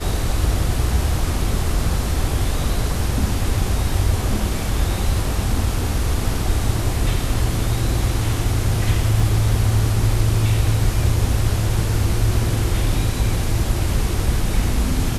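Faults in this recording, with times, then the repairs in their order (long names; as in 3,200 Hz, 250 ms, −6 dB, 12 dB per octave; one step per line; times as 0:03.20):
0:09.20: drop-out 2.3 ms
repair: repair the gap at 0:09.20, 2.3 ms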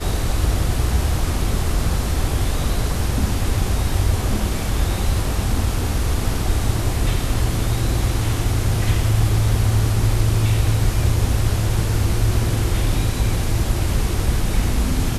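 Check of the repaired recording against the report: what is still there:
none of them is left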